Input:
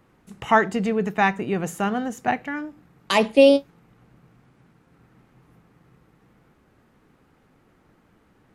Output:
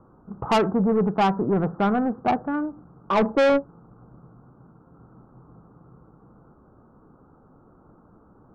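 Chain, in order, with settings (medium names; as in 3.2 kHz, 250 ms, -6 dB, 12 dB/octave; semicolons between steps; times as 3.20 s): steep low-pass 1.4 kHz 72 dB/octave; saturation -21.5 dBFS, distortion -5 dB; trim +6 dB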